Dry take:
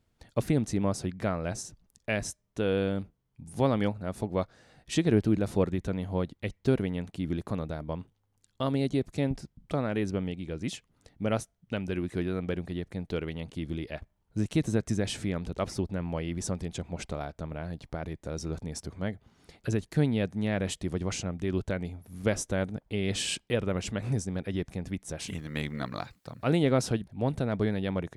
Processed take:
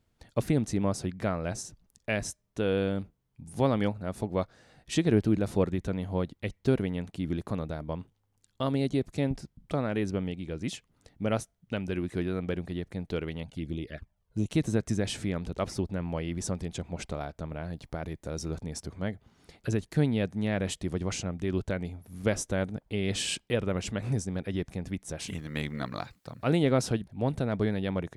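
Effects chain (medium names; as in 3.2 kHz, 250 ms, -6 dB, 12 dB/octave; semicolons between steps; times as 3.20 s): 13.43–14.50 s: touch-sensitive flanger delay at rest 2.3 ms, full sweep at -29.5 dBFS; 17.76–18.55 s: treble shelf 8.8 kHz +6 dB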